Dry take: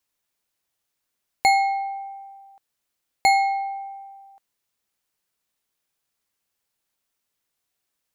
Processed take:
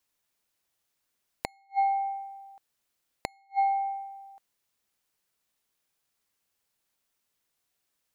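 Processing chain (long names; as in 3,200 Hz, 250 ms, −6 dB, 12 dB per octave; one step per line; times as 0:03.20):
gate with flip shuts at −16 dBFS, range −42 dB
dynamic equaliser 1,000 Hz, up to +5 dB, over −40 dBFS, Q 0.9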